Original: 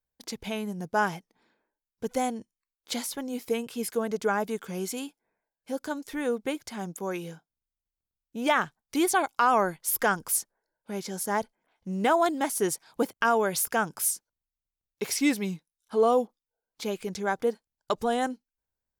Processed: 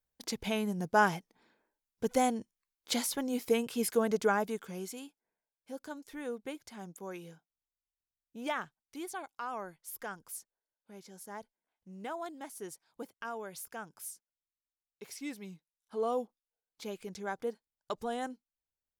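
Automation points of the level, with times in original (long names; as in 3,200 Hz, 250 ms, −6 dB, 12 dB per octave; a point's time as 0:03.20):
0:04.15 0 dB
0:05.01 −10.5 dB
0:08.48 −10.5 dB
0:08.95 −17 dB
0:15.23 −17 dB
0:16.18 −9.5 dB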